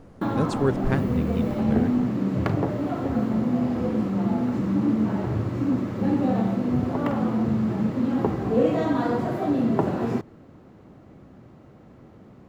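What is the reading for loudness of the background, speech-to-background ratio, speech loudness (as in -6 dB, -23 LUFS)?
-24.5 LUFS, -4.0 dB, -28.5 LUFS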